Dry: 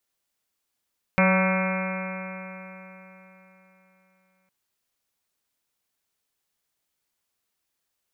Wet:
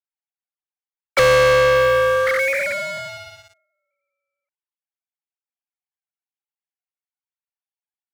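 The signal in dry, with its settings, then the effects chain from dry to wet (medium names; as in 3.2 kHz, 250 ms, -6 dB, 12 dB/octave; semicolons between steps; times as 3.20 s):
stretched partials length 3.31 s, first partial 186 Hz, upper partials -19/-3/-11/-10/-10/-10/-9.5/-15/-15/-5.5/-6.5/-19 dB, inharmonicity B 0.001, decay 3.77 s, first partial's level -19 dB
formants replaced by sine waves; gate -55 dBFS, range -8 dB; waveshaping leveller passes 5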